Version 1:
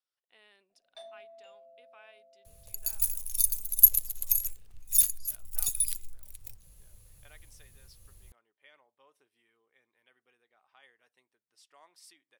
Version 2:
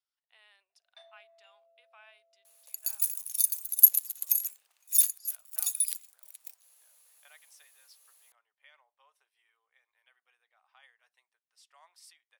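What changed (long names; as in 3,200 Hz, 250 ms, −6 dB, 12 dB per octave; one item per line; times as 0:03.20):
first sound: add resonant band-pass 1,800 Hz, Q 0.85
master: add high-pass filter 690 Hz 24 dB per octave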